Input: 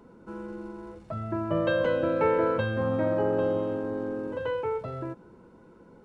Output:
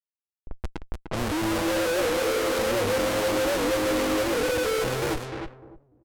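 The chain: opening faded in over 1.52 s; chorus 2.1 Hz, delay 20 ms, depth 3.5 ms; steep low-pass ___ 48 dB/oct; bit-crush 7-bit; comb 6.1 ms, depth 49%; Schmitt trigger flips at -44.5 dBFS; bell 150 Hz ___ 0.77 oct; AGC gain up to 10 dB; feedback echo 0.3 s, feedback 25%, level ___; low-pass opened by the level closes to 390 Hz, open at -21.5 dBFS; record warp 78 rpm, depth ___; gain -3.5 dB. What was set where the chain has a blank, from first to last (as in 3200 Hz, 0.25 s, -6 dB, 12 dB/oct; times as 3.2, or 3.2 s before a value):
580 Hz, -11 dB, -6 dB, 160 cents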